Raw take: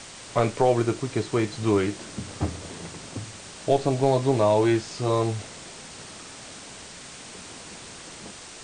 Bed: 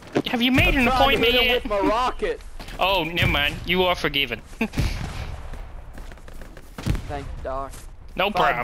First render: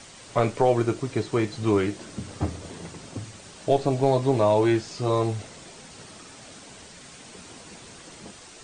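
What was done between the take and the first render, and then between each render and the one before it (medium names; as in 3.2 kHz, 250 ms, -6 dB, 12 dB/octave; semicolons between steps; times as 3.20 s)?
noise reduction 6 dB, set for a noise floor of -43 dBFS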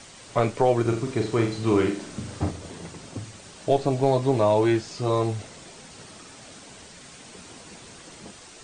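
0.81–2.51 s: flutter echo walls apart 7.4 m, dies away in 0.46 s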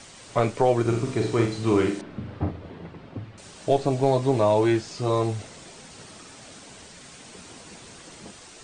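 0.84–1.46 s: flutter echo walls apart 10.2 m, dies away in 0.42 s; 2.01–3.38 s: distance through air 390 m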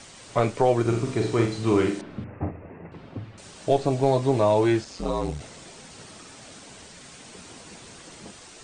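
2.24–2.92 s: rippled Chebyshev low-pass 2.7 kHz, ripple 3 dB; 4.84–5.40 s: ring modulator 120 Hz -> 34 Hz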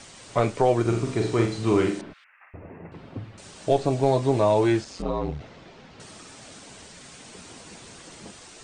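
2.13–2.54 s: high-pass 1.5 kHz 24 dB/octave; 5.02–6.00 s: distance through air 230 m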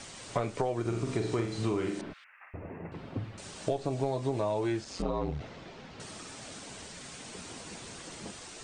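compression 10:1, threshold -27 dBFS, peak gain reduction 12.5 dB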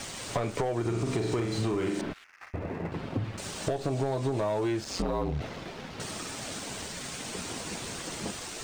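waveshaping leveller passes 2; compression, threshold -26 dBFS, peak gain reduction 5.5 dB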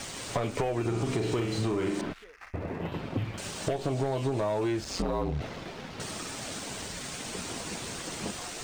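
add bed -28 dB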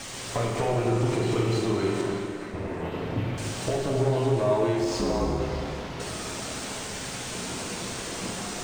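repeats whose band climbs or falls 200 ms, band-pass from 490 Hz, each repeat 1.4 oct, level -8.5 dB; plate-style reverb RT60 2.7 s, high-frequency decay 0.75×, DRR -1.5 dB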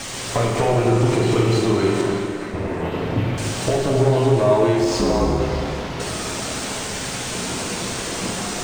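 trim +7.5 dB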